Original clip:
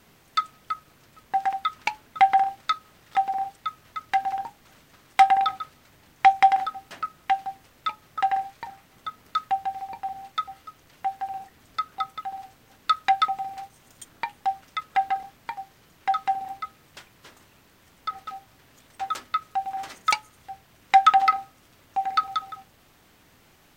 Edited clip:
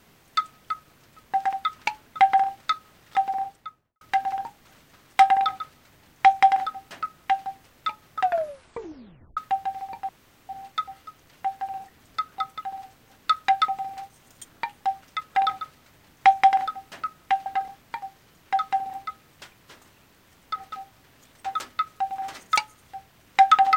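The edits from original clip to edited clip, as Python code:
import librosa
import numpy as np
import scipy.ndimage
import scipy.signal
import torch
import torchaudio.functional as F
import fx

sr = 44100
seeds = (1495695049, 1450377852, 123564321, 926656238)

y = fx.studio_fade_out(x, sr, start_s=3.34, length_s=0.67)
y = fx.edit(y, sr, fx.duplicate(start_s=5.4, length_s=2.05, to_s=15.01),
    fx.tape_stop(start_s=8.2, length_s=1.17),
    fx.insert_room_tone(at_s=10.09, length_s=0.4), tone=tone)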